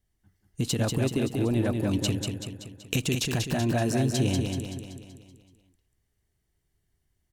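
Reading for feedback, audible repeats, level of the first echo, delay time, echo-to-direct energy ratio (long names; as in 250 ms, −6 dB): 53%, 6, −4.5 dB, 190 ms, −3.0 dB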